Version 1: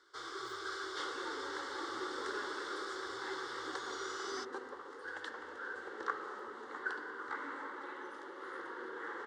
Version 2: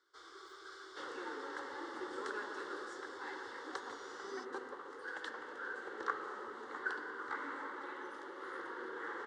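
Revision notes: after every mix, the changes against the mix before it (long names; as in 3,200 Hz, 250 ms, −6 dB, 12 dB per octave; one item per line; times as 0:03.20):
speech: muted
first sound −10.5 dB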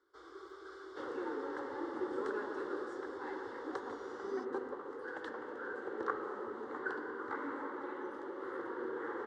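master: add tilt shelving filter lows +9 dB, about 1,200 Hz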